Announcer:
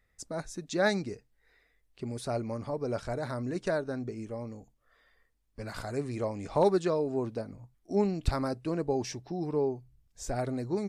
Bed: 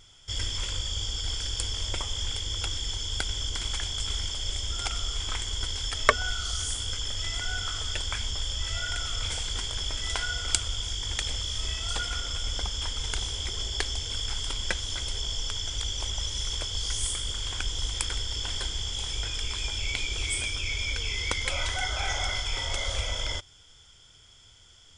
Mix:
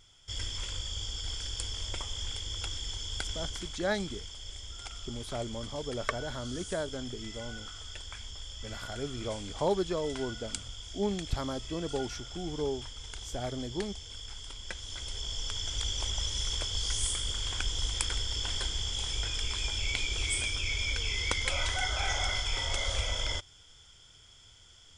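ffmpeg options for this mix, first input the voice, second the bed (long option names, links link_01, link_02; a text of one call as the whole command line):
ffmpeg -i stem1.wav -i stem2.wav -filter_complex "[0:a]adelay=3050,volume=-4dB[link_01];[1:a]volume=5dB,afade=type=out:start_time=3.43:duration=0.33:silence=0.473151,afade=type=in:start_time=14.64:duration=1.24:silence=0.298538[link_02];[link_01][link_02]amix=inputs=2:normalize=0" out.wav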